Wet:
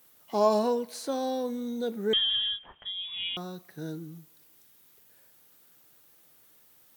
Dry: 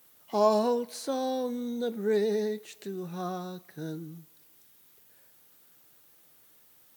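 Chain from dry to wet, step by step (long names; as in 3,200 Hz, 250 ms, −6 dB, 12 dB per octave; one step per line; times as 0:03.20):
0:02.13–0:03.37: voice inversion scrambler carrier 3,600 Hz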